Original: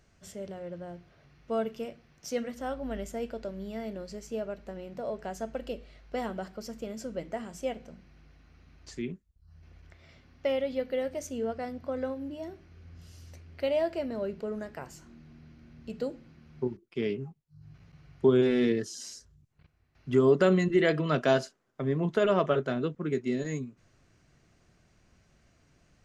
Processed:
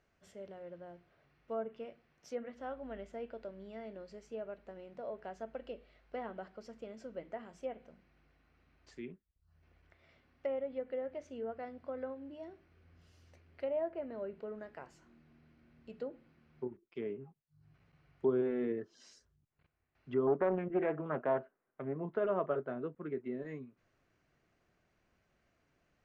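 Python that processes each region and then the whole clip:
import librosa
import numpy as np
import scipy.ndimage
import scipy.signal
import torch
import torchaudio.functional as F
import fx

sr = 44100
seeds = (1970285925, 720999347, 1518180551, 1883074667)

y = fx.chain(x, sr, fx.lowpass(hz=2700.0, slope=24),
    fx.doppler_dist(depth_ms=0.39), at=(20.27, 21.96))
y = fx.env_lowpass_down(y, sr, base_hz=1400.0, full_db=-26.5)
y = fx.bass_treble(y, sr, bass_db=-8, treble_db=-11)
y = F.gain(torch.from_numpy(y), -7.0).numpy()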